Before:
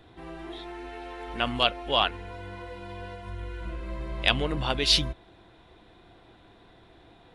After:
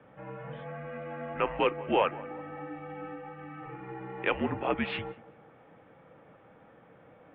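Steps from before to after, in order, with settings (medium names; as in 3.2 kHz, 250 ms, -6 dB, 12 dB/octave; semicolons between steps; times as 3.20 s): overdrive pedal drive 11 dB, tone 1 kHz, clips at -5.5 dBFS; band-passed feedback delay 188 ms, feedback 45%, band-pass 750 Hz, level -18.5 dB; mistuned SSB -200 Hz 350–2800 Hz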